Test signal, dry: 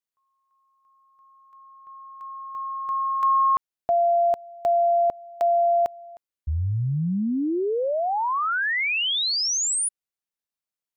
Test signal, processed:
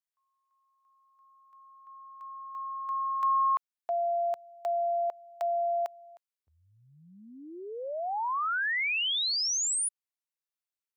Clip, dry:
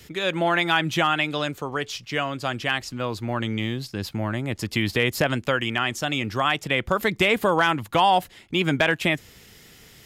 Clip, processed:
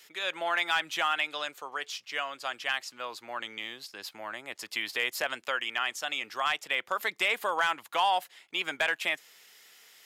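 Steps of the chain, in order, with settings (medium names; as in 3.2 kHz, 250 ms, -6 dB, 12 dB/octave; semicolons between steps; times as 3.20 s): high-pass 760 Hz 12 dB/octave; hard clipper -12 dBFS; trim -5 dB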